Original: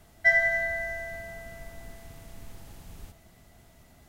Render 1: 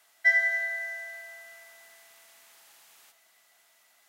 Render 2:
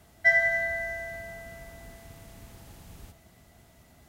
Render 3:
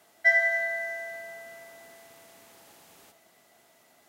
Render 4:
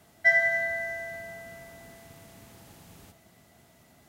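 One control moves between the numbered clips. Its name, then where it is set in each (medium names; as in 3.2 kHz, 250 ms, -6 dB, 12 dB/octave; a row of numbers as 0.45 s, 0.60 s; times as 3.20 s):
high-pass, cutoff frequency: 1.2 kHz, 41 Hz, 400 Hz, 120 Hz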